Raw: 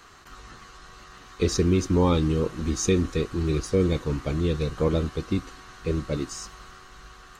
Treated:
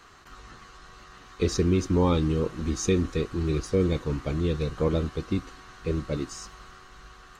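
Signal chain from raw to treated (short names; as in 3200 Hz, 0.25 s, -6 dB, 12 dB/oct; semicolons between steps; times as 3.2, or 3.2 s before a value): high shelf 6400 Hz -4.5 dB; gain -1.5 dB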